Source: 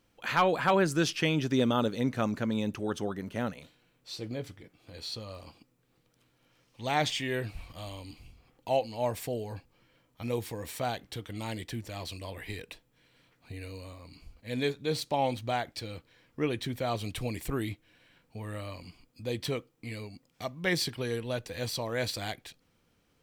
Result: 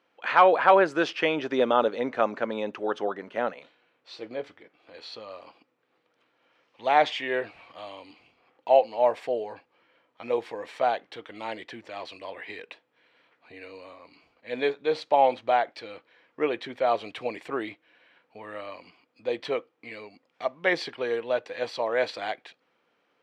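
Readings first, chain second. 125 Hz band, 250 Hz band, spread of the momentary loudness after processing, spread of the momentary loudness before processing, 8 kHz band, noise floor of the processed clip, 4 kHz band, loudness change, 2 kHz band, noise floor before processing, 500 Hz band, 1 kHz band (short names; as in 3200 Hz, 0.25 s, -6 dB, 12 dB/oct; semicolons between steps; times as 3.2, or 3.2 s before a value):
-15.0 dB, -2.5 dB, 21 LU, 19 LU, under -10 dB, -72 dBFS, -1.0 dB, +6.0 dB, +5.0 dB, -71 dBFS, +7.5 dB, +8.5 dB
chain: dynamic EQ 610 Hz, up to +5 dB, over -39 dBFS, Q 0.81; BPF 460–2600 Hz; gain +5.5 dB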